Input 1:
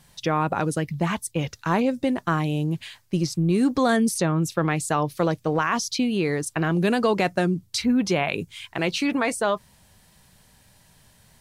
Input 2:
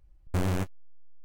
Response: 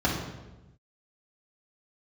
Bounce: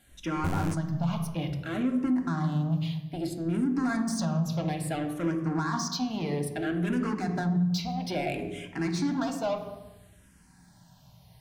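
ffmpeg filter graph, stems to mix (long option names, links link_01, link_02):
-filter_complex "[0:a]bandreject=frequency=480:width=13,asoftclip=type=tanh:threshold=-24dB,asplit=2[link_01][link_02];[link_02]afreqshift=-0.6[link_03];[link_01][link_03]amix=inputs=2:normalize=1,volume=-4.5dB,asplit=2[link_04][link_05];[link_05]volume=-13dB[link_06];[1:a]alimiter=level_in=1.5dB:limit=-24dB:level=0:latency=1,volume=-1.5dB,adelay=100,volume=0.5dB[link_07];[2:a]atrim=start_sample=2205[link_08];[link_06][link_08]afir=irnorm=-1:irlink=0[link_09];[link_04][link_07][link_09]amix=inputs=3:normalize=0,alimiter=limit=-19.5dB:level=0:latency=1:release=145"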